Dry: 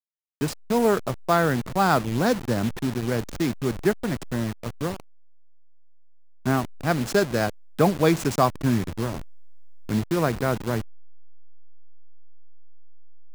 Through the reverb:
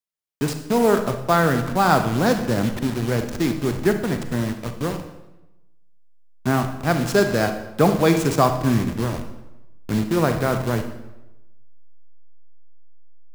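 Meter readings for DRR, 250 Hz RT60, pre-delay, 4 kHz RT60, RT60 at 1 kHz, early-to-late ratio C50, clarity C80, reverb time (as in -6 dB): 7.0 dB, 1.1 s, 32 ms, 0.80 s, 0.95 s, 8.5 dB, 11.0 dB, 1.0 s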